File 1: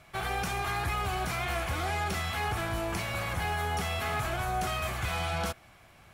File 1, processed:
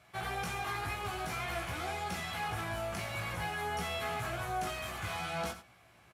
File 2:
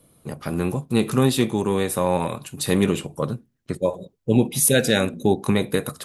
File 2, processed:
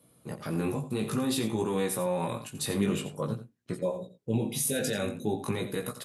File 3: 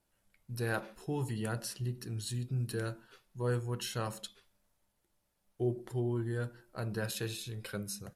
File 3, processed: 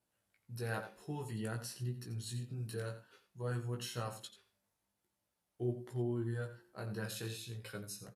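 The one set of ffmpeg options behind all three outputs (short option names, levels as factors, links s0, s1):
-filter_complex "[0:a]alimiter=limit=0.188:level=0:latency=1:release=32,asplit=2[s0][s1];[s1]aecho=0:1:87:0.251[s2];[s0][s2]amix=inputs=2:normalize=0,flanger=delay=16.5:depth=3.1:speed=0.51,aresample=32000,aresample=44100,highpass=80,volume=0.794"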